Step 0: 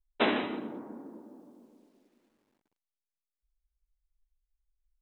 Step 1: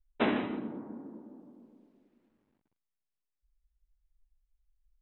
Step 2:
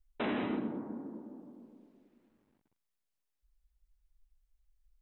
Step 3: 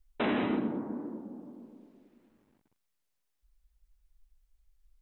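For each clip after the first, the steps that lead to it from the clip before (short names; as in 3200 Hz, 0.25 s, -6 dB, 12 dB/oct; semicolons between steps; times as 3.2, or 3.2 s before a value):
tone controls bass +9 dB, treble -12 dB; gain -3 dB
limiter -27 dBFS, peak gain reduction 11.5 dB; gain +2 dB
record warp 33 1/3 rpm, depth 100 cents; gain +4.5 dB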